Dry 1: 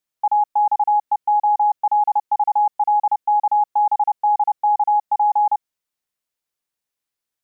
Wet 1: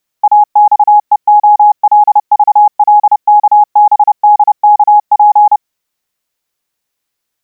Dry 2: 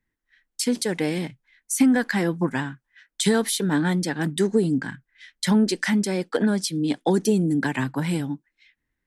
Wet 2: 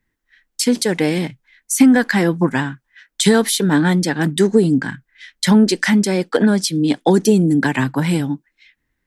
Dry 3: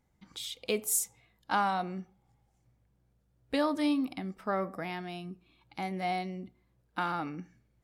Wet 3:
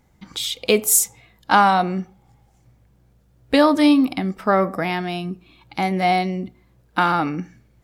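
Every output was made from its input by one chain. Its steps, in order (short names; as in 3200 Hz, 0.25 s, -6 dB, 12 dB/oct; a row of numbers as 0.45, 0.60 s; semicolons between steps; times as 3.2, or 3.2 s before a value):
bell 9300 Hz -2.5 dB 0.26 oct; normalise peaks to -1.5 dBFS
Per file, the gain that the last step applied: +11.0, +7.0, +14.0 dB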